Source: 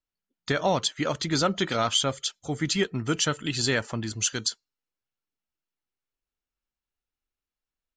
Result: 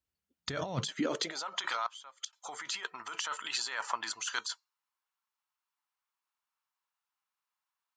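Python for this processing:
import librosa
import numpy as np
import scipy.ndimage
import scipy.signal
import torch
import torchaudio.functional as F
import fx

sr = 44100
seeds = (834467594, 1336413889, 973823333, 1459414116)

y = fx.gate_flip(x, sr, shuts_db=-21.0, range_db=-27, at=(1.86, 2.33))
y = fx.over_compress(y, sr, threshold_db=-31.0, ratio=-1.0)
y = fx.filter_sweep_highpass(y, sr, from_hz=71.0, to_hz=1000.0, start_s=0.58, end_s=1.48, q=3.7)
y = y * 10.0 ** (-4.0 / 20.0)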